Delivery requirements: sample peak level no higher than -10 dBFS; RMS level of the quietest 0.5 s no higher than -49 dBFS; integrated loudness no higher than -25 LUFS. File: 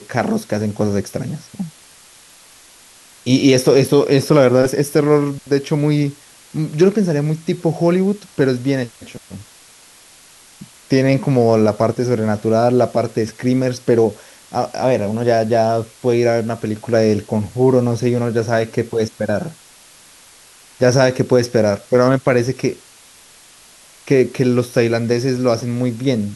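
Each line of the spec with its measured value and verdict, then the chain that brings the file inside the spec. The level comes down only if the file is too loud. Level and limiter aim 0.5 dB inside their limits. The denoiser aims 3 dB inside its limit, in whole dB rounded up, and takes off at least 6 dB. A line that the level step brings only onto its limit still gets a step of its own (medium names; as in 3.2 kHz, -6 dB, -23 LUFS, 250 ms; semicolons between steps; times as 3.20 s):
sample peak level -2.0 dBFS: fail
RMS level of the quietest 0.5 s -46 dBFS: fail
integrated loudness -17.0 LUFS: fail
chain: trim -8.5 dB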